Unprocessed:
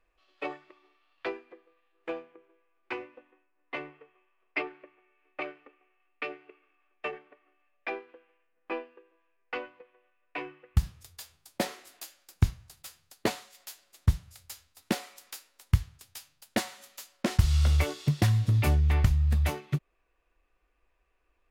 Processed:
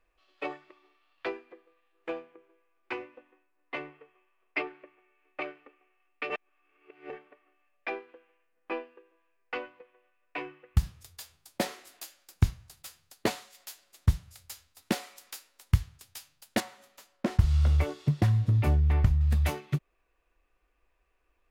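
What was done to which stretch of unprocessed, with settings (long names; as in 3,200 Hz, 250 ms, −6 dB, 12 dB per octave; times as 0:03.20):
0:06.30–0:07.10: reverse
0:16.60–0:19.21: high-shelf EQ 2,200 Hz −11.5 dB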